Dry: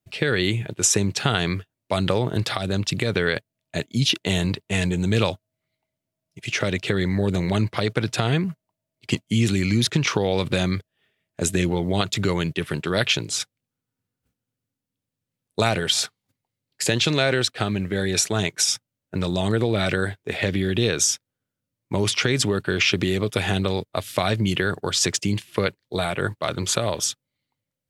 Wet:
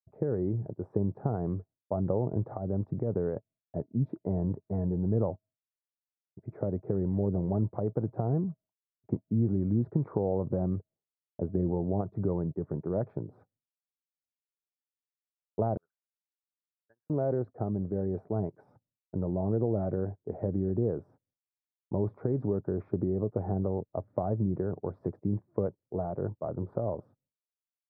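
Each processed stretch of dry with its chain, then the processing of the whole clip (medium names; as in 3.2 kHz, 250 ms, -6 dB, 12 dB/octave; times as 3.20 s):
15.77–17.10 s: bass shelf 170 Hz +9 dB + auto-wah 760–1600 Hz, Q 16, up, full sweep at -17.5 dBFS + upward expansion 2.5:1, over -47 dBFS
whole clip: expander -43 dBFS; inverse Chebyshev low-pass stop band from 2.7 kHz, stop band 60 dB; trim -6.5 dB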